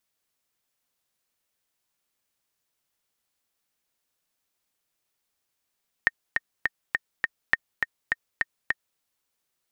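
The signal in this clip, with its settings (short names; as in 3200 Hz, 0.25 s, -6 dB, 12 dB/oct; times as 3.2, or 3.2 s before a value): metronome 205 bpm, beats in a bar 5, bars 2, 1840 Hz, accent 4.5 dB -5.5 dBFS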